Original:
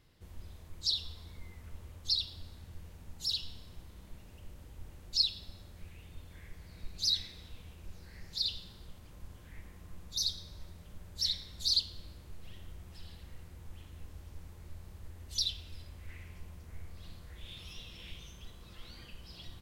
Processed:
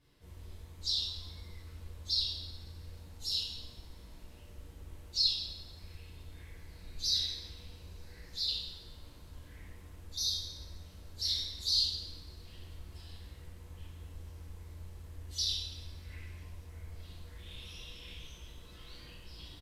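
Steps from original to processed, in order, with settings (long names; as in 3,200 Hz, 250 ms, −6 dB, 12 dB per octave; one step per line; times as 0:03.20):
coupled-rooms reverb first 0.81 s, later 2.7 s, from −24 dB, DRR −7.5 dB
downsampling to 32,000 Hz
level −8 dB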